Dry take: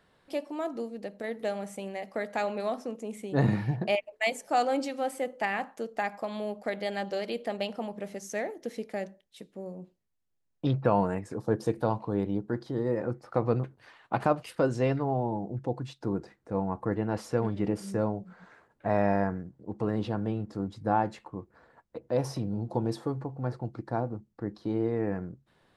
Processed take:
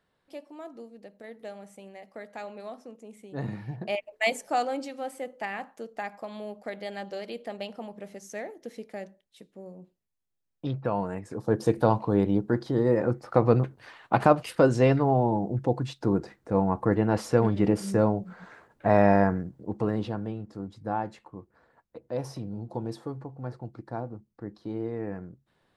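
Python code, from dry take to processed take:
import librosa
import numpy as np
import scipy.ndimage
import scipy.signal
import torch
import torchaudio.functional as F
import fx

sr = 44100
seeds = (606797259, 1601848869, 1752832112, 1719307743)

y = fx.gain(x, sr, db=fx.line((3.59, -9.0), (4.31, 3.5), (4.77, -4.0), (11.05, -4.0), (11.77, 6.0), (19.58, 6.0), (20.37, -4.0)))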